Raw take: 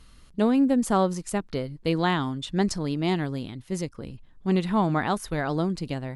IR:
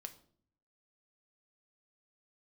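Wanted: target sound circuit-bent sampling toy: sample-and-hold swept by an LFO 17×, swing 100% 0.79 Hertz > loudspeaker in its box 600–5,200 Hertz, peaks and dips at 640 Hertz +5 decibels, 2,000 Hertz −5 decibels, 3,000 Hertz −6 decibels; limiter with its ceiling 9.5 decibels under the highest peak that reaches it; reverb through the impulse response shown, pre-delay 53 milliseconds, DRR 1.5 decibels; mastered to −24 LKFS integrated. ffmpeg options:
-filter_complex "[0:a]alimiter=limit=-20dB:level=0:latency=1,asplit=2[link_01][link_02];[1:a]atrim=start_sample=2205,adelay=53[link_03];[link_02][link_03]afir=irnorm=-1:irlink=0,volume=3.5dB[link_04];[link_01][link_04]amix=inputs=2:normalize=0,acrusher=samples=17:mix=1:aa=0.000001:lfo=1:lforange=17:lforate=0.79,highpass=600,equalizer=frequency=640:width_type=q:width=4:gain=5,equalizer=frequency=2000:width_type=q:width=4:gain=-5,equalizer=frequency=3000:width_type=q:width=4:gain=-6,lowpass=frequency=5200:width=0.5412,lowpass=frequency=5200:width=1.3066,volume=10.5dB"

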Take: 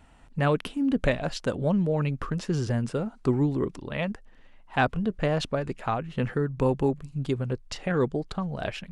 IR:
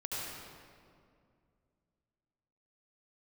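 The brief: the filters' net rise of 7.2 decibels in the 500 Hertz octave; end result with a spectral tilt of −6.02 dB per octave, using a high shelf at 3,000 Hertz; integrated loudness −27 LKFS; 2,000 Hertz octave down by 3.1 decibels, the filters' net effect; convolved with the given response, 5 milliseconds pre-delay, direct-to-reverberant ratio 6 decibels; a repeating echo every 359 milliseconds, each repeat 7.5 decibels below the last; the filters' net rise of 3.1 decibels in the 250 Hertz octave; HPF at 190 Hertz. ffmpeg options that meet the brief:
-filter_complex "[0:a]highpass=190,equalizer=frequency=250:width_type=o:gain=3.5,equalizer=frequency=500:width_type=o:gain=8,equalizer=frequency=2000:width_type=o:gain=-7.5,highshelf=frequency=3000:gain=7,aecho=1:1:359|718|1077|1436|1795:0.422|0.177|0.0744|0.0312|0.0131,asplit=2[link_01][link_02];[1:a]atrim=start_sample=2205,adelay=5[link_03];[link_02][link_03]afir=irnorm=-1:irlink=0,volume=-9.5dB[link_04];[link_01][link_04]amix=inputs=2:normalize=0,volume=-4.5dB"

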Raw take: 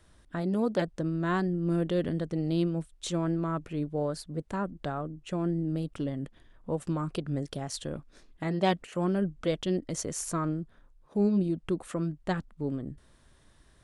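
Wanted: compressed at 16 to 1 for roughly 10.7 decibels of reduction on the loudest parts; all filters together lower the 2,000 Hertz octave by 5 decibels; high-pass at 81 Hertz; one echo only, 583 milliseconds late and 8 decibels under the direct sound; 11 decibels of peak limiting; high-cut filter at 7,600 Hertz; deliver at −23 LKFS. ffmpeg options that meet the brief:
ffmpeg -i in.wav -af "highpass=81,lowpass=7600,equalizer=frequency=2000:width_type=o:gain=-6.5,acompressor=threshold=-32dB:ratio=16,alimiter=level_in=9dB:limit=-24dB:level=0:latency=1,volume=-9dB,aecho=1:1:583:0.398,volume=18.5dB" out.wav

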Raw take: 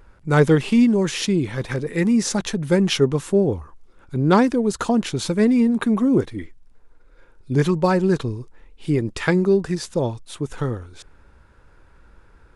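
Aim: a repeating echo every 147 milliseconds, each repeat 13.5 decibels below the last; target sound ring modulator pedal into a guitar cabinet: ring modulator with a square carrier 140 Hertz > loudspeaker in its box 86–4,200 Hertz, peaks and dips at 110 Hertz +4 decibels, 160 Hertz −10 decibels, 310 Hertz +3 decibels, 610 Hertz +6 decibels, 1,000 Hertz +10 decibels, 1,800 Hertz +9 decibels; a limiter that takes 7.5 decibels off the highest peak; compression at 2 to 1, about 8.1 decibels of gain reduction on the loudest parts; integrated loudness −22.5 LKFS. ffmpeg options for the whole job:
ffmpeg -i in.wav -af "acompressor=threshold=-26dB:ratio=2,alimiter=limit=-18.5dB:level=0:latency=1,aecho=1:1:147|294:0.211|0.0444,aeval=exprs='val(0)*sgn(sin(2*PI*140*n/s))':channel_layout=same,highpass=86,equalizer=frequency=110:width_type=q:width=4:gain=4,equalizer=frequency=160:width_type=q:width=4:gain=-10,equalizer=frequency=310:width_type=q:width=4:gain=3,equalizer=frequency=610:width_type=q:width=4:gain=6,equalizer=frequency=1000:width_type=q:width=4:gain=10,equalizer=frequency=1800:width_type=q:width=4:gain=9,lowpass=frequency=4200:width=0.5412,lowpass=frequency=4200:width=1.3066,volume=3dB" out.wav

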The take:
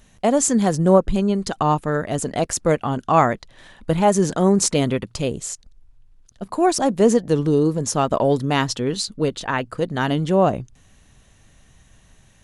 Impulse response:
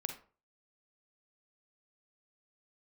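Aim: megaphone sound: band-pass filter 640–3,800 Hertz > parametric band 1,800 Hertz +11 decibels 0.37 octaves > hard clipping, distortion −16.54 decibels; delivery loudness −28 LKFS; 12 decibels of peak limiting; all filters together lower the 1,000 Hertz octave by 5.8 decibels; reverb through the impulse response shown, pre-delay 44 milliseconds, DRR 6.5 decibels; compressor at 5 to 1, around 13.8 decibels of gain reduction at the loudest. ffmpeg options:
-filter_complex "[0:a]equalizer=frequency=1000:width_type=o:gain=-7,acompressor=threshold=-27dB:ratio=5,alimiter=level_in=2dB:limit=-24dB:level=0:latency=1,volume=-2dB,asplit=2[link_01][link_02];[1:a]atrim=start_sample=2205,adelay=44[link_03];[link_02][link_03]afir=irnorm=-1:irlink=0,volume=-6.5dB[link_04];[link_01][link_04]amix=inputs=2:normalize=0,highpass=640,lowpass=3800,equalizer=frequency=1800:width_type=o:width=0.37:gain=11,asoftclip=type=hard:threshold=-30.5dB,volume=13.5dB"

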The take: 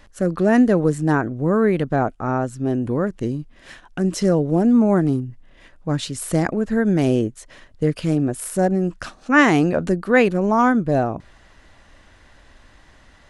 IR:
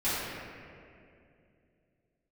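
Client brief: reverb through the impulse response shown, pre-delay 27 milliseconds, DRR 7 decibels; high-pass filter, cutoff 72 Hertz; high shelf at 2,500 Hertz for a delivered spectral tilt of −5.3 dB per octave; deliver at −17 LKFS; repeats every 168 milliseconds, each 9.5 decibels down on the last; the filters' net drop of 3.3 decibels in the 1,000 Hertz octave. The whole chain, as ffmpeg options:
-filter_complex "[0:a]highpass=72,equalizer=frequency=1000:width_type=o:gain=-4,highshelf=frequency=2500:gain=-3.5,aecho=1:1:168|336|504|672:0.335|0.111|0.0365|0.012,asplit=2[link_01][link_02];[1:a]atrim=start_sample=2205,adelay=27[link_03];[link_02][link_03]afir=irnorm=-1:irlink=0,volume=-18dB[link_04];[link_01][link_04]amix=inputs=2:normalize=0,volume=2dB"

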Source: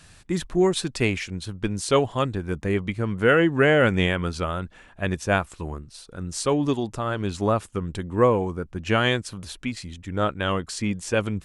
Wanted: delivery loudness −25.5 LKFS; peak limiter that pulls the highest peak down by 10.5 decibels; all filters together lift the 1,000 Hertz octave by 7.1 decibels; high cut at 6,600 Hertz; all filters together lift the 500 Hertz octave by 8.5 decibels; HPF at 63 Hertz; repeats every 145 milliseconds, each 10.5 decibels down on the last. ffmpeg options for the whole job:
ffmpeg -i in.wav -af "highpass=63,lowpass=6600,equalizer=frequency=500:width_type=o:gain=8.5,equalizer=frequency=1000:width_type=o:gain=7,alimiter=limit=-8.5dB:level=0:latency=1,aecho=1:1:145|290|435:0.299|0.0896|0.0269,volume=-4dB" out.wav

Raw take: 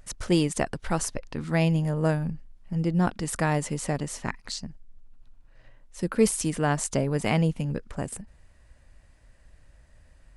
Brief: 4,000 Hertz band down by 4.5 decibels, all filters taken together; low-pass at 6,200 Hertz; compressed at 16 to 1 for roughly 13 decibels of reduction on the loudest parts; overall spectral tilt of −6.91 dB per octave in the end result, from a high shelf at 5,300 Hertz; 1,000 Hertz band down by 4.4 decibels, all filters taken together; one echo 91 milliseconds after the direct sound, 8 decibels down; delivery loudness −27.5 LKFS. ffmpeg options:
ffmpeg -i in.wav -af "lowpass=6200,equalizer=frequency=1000:width_type=o:gain=-6,equalizer=frequency=4000:width_type=o:gain=-3,highshelf=frequency=5300:gain=-4.5,acompressor=threshold=-28dB:ratio=16,aecho=1:1:91:0.398,volume=7dB" out.wav

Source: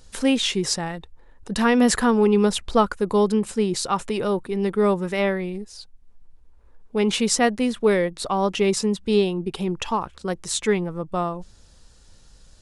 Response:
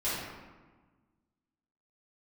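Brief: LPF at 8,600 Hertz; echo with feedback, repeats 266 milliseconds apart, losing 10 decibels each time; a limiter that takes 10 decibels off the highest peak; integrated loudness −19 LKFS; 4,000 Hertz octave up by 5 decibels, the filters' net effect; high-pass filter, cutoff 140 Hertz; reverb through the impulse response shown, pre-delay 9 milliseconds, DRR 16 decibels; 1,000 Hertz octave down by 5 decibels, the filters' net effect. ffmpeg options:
-filter_complex "[0:a]highpass=140,lowpass=8600,equalizer=frequency=1000:width_type=o:gain=-7,equalizer=frequency=4000:width_type=o:gain=7,alimiter=limit=-17dB:level=0:latency=1,aecho=1:1:266|532|798|1064:0.316|0.101|0.0324|0.0104,asplit=2[link_01][link_02];[1:a]atrim=start_sample=2205,adelay=9[link_03];[link_02][link_03]afir=irnorm=-1:irlink=0,volume=-24dB[link_04];[link_01][link_04]amix=inputs=2:normalize=0,volume=7dB"

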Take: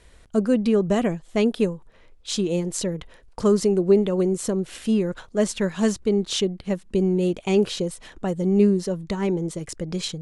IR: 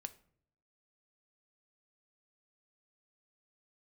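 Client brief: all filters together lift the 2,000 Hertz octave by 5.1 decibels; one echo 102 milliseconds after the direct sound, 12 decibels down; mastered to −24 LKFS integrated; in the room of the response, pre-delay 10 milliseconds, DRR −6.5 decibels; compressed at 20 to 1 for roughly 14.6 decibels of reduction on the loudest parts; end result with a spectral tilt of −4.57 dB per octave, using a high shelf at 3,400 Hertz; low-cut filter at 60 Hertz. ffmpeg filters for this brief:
-filter_complex "[0:a]highpass=60,equalizer=frequency=2000:width_type=o:gain=4,highshelf=frequency=3400:gain=7,acompressor=threshold=-26dB:ratio=20,aecho=1:1:102:0.251,asplit=2[link_01][link_02];[1:a]atrim=start_sample=2205,adelay=10[link_03];[link_02][link_03]afir=irnorm=-1:irlink=0,volume=10dB[link_04];[link_01][link_04]amix=inputs=2:normalize=0,volume=-1dB"

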